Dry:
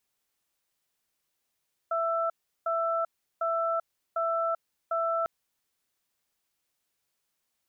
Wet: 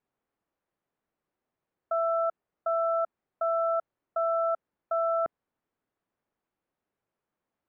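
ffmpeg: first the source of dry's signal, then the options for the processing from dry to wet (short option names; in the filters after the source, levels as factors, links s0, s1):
-f lavfi -i "aevalsrc='0.0398*(sin(2*PI*664*t)+sin(2*PI*1330*t))*clip(min(mod(t,0.75),0.39-mod(t,0.75))/0.005,0,1)':d=3.35:s=44100"
-af "lowpass=1500,equalizer=f=290:w=0.46:g=5.5"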